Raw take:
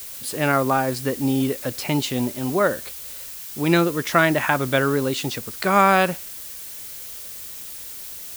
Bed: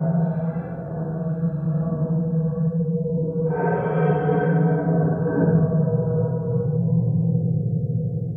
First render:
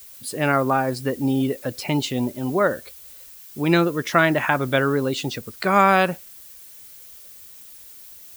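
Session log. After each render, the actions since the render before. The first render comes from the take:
broadband denoise 10 dB, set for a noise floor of −36 dBFS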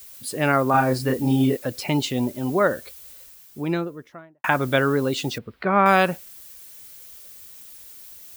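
0:00.71–0:01.57: double-tracking delay 31 ms −2 dB
0:03.01–0:04.44: fade out and dull
0:05.38–0:05.86: high-frequency loss of the air 430 metres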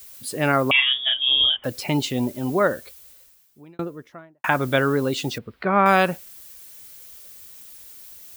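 0:00.71–0:01.64: voice inversion scrambler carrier 3,500 Hz
0:02.64–0:03.79: fade out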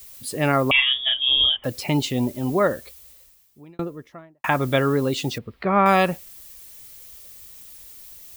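low-shelf EQ 67 Hz +10.5 dB
notch filter 1,500 Hz, Q 9.5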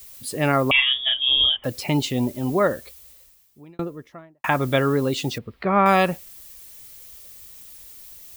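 no processing that can be heard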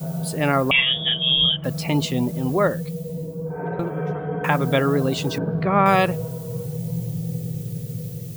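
mix in bed −7 dB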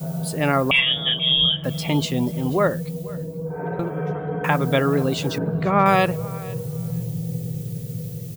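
repeating echo 484 ms, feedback 16%, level −21.5 dB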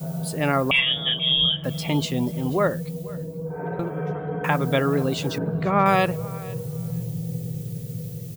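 level −2 dB

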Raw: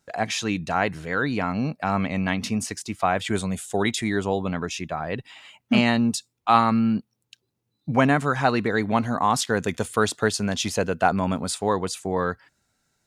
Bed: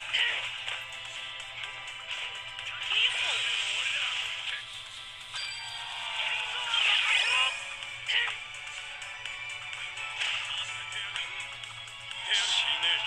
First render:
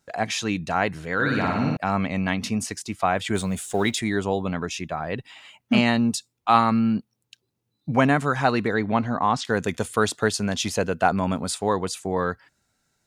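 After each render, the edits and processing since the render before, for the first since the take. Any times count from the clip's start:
0:01.14–0:01.77: flutter between parallel walls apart 9.9 metres, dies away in 1.1 s
0:03.35–0:03.99: mu-law and A-law mismatch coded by mu
0:08.74–0:09.45: high-frequency loss of the air 120 metres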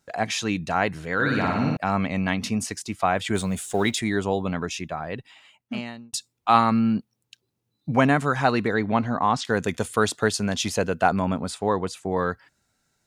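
0:04.69–0:06.13: fade out
0:11.22–0:12.12: high-shelf EQ 3,900 Hz −9 dB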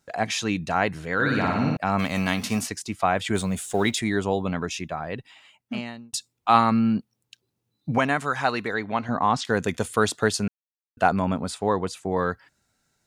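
0:01.98–0:02.67: spectral envelope flattened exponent 0.6
0:07.98–0:09.09: low-shelf EQ 470 Hz −9.5 dB
0:10.48–0:10.97: silence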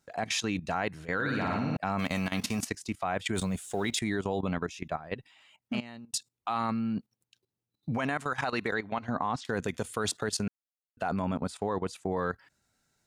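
brickwall limiter −15.5 dBFS, peak gain reduction 11 dB
output level in coarse steps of 15 dB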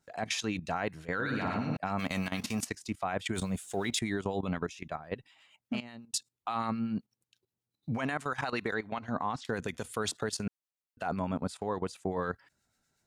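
two-band tremolo in antiphase 8.2 Hz, depth 50%, crossover 1,400 Hz
tape wow and flutter 15 cents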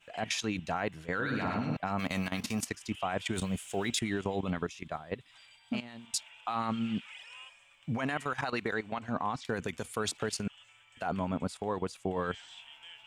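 mix in bed −23.5 dB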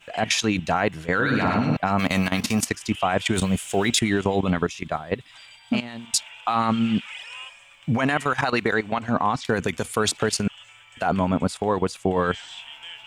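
level +11 dB

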